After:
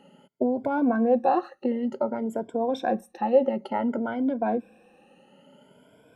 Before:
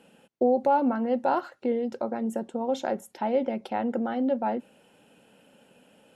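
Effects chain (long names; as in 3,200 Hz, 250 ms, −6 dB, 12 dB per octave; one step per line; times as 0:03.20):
rippled gain that drifts along the octave scale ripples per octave 1.7, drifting +0.56 Hz, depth 19 dB
high-shelf EQ 2,600 Hz −10 dB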